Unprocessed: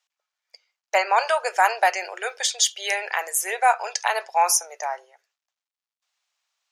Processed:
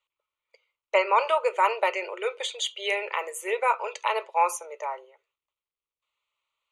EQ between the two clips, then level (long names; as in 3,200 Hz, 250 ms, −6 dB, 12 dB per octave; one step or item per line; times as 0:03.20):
high-frequency loss of the air 72 metres
low-shelf EQ 490 Hz +10.5 dB
phaser with its sweep stopped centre 1,100 Hz, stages 8
0.0 dB